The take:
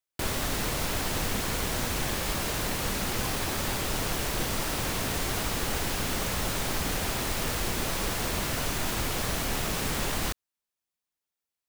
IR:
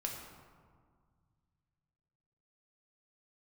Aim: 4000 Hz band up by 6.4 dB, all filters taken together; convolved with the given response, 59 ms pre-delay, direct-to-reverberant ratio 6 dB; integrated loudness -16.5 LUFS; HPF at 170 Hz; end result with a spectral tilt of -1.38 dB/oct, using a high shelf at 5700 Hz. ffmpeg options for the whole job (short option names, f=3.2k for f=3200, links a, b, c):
-filter_complex "[0:a]highpass=170,equalizer=f=4k:t=o:g=5.5,highshelf=f=5.7k:g=6.5,asplit=2[a][b];[1:a]atrim=start_sample=2205,adelay=59[c];[b][c]afir=irnorm=-1:irlink=0,volume=-7dB[d];[a][d]amix=inputs=2:normalize=0,volume=8dB"